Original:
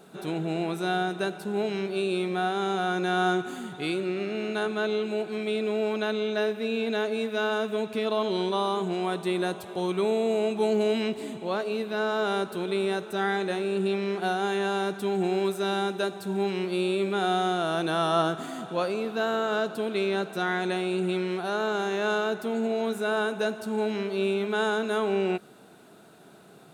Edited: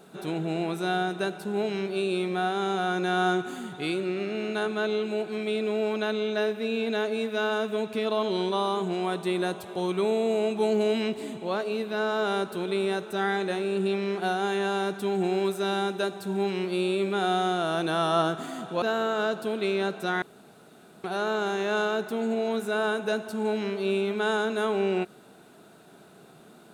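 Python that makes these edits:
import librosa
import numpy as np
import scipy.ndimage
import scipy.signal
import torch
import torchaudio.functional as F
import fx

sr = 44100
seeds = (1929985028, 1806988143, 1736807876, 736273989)

y = fx.edit(x, sr, fx.cut(start_s=18.82, length_s=0.33),
    fx.room_tone_fill(start_s=20.55, length_s=0.82), tone=tone)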